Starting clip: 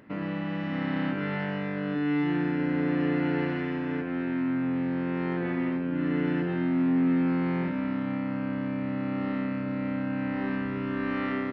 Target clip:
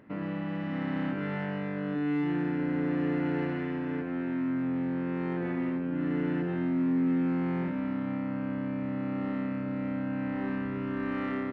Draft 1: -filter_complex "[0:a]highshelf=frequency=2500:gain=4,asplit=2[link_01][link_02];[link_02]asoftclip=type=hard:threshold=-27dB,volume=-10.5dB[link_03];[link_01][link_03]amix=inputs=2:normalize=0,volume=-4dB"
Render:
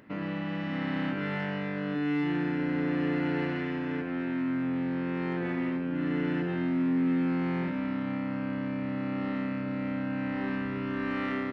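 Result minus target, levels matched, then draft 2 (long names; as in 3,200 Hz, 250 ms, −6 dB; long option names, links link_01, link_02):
4,000 Hz band +6.0 dB
-filter_complex "[0:a]highshelf=frequency=2500:gain=-7,asplit=2[link_01][link_02];[link_02]asoftclip=type=hard:threshold=-27dB,volume=-10.5dB[link_03];[link_01][link_03]amix=inputs=2:normalize=0,volume=-4dB"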